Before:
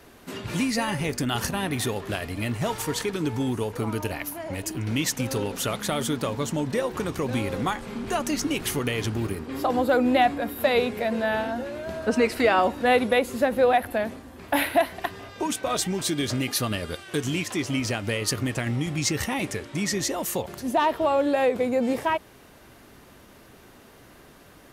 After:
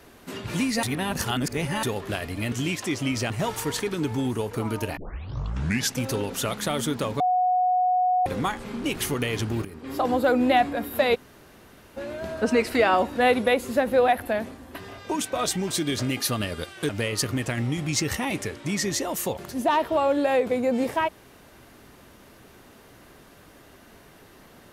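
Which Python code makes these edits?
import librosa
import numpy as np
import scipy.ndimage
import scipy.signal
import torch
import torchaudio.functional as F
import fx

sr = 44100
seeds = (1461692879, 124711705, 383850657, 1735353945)

y = fx.edit(x, sr, fx.reverse_span(start_s=0.83, length_s=1.0),
    fx.tape_start(start_s=4.19, length_s=1.01),
    fx.bleep(start_s=6.42, length_s=1.06, hz=732.0, db=-18.5),
    fx.cut(start_s=8.06, length_s=0.43),
    fx.fade_in_from(start_s=9.3, length_s=0.38, floor_db=-12.5),
    fx.room_tone_fill(start_s=10.8, length_s=0.82, crossfade_s=0.02),
    fx.cut(start_s=14.4, length_s=0.66),
    fx.move(start_s=17.2, length_s=0.78, to_s=2.52), tone=tone)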